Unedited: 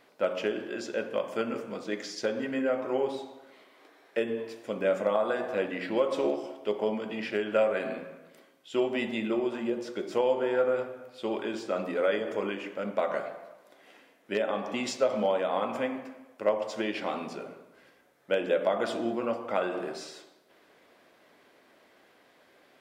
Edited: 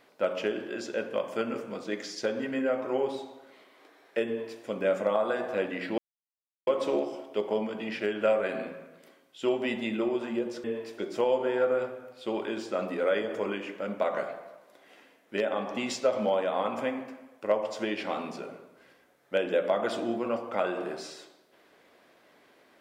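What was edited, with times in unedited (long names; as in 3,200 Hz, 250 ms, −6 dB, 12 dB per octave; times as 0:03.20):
0:04.27–0:04.61: duplicate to 0:09.95
0:05.98: splice in silence 0.69 s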